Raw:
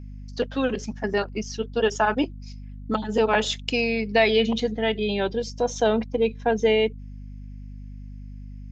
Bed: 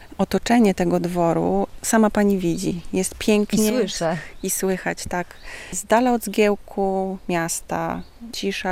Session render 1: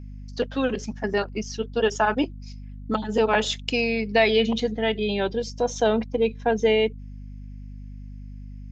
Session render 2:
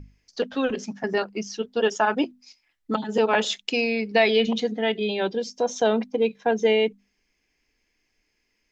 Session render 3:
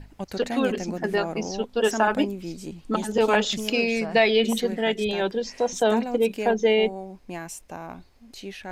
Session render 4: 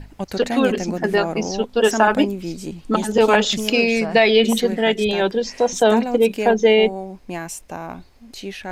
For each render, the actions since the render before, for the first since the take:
no processing that can be heard
mains-hum notches 50/100/150/200/250 Hz
mix in bed −13 dB
level +6 dB; brickwall limiter −3 dBFS, peak gain reduction 2.5 dB

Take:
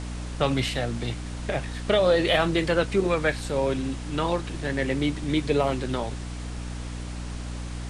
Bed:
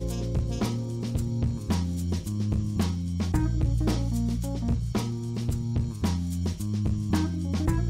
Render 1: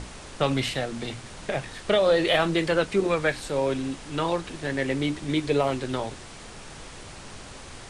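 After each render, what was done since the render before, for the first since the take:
mains-hum notches 60/120/180/240/300 Hz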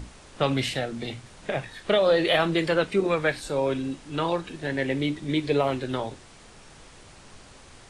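noise reduction from a noise print 7 dB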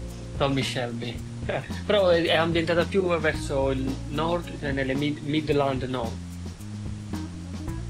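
mix in bed −7.5 dB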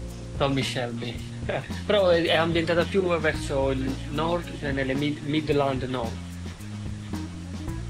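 delay with a high-pass on its return 564 ms, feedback 78%, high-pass 1,400 Hz, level −17.5 dB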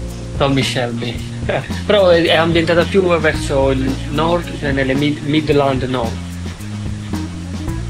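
level +10.5 dB
brickwall limiter −2 dBFS, peak gain reduction 2.5 dB

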